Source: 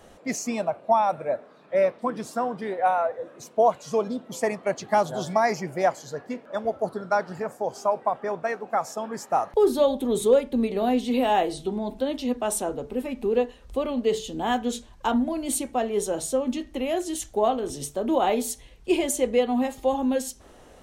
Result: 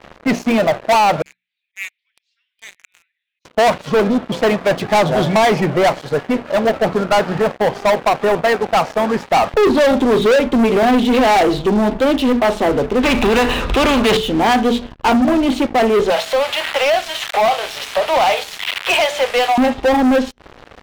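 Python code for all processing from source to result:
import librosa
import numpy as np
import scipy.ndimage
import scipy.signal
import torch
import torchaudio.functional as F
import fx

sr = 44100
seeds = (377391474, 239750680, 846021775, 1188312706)

y = fx.chain(x, sr, fx.steep_highpass(hz=2200.0, slope=48),
    fx.auto_swell(attack_ms=130.0), at=(1.22, 3.45))
y = fx.chain(y, sr, fx.comb(ms=0.8, depth=0.32),
    fx.spectral_comp(ratio=2.0), at=(13.03, 14.17))
y = fx.chain(y, sr, fx.crossing_spikes(level_db=-21.5),
    fx.steep_highpass(hz=610.0, slope=36),
    fx.band_squash(depth_pct=70), at=(16.1, 19.58))
y = scipy.signal.sosfilt(scipy.signal.butter(4, 3500.0, 'lowpass', fs=sr, output='sos'), y)
y = fx.hum_notches(y, sr, base_hz=60, count=4)
y = fx.leveller(y, sr, passes=5)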